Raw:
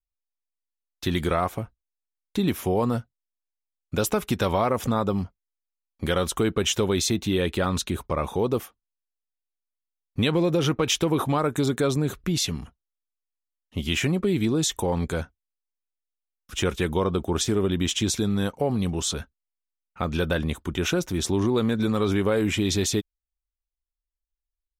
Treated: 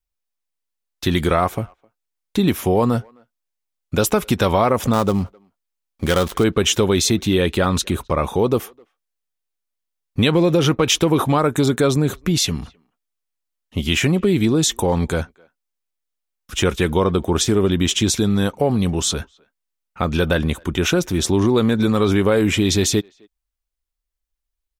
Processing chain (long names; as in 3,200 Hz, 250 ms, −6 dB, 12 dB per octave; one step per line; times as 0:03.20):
0:04.93–0:06.44: gap after every zero crossing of 0.085 ms
far-end echo of a speakerphone 260 ms, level −28 dB
level +6.5 dB